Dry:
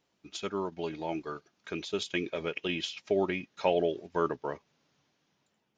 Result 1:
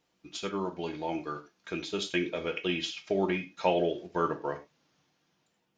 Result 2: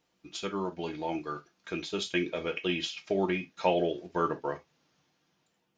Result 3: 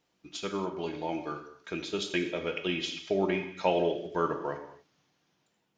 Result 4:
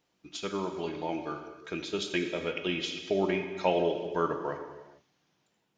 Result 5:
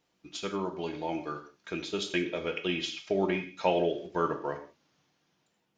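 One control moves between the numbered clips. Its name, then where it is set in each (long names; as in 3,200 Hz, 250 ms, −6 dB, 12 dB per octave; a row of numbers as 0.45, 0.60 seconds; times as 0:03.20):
reverb whose tail is shaped and stops, gate: 130, 90, 300, 480, 200 milliseconds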